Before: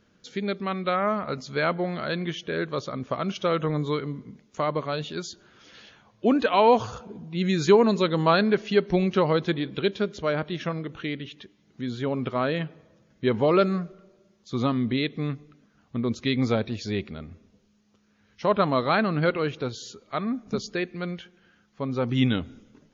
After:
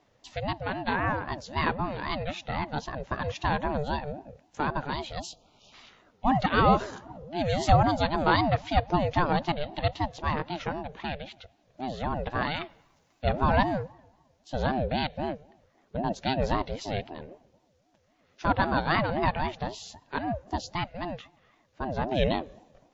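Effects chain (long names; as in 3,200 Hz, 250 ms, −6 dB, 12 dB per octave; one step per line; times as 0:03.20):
0:05.20–0:05.73: time-frequency box erased 1,000–2,600 Hz
0:12.42–0:13.24: spectral tilt +2.5 dB per octave
ring modulator whose carrier an LFO sweeps 410 Hz, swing 30%, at 3.8 Hz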